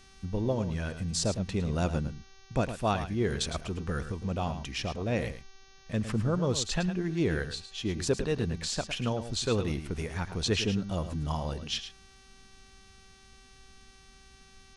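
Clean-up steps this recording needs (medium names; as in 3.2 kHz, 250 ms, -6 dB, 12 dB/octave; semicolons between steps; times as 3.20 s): de-hum 386.5 Hz, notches 17; inverse comb 108 ms -10.5 dB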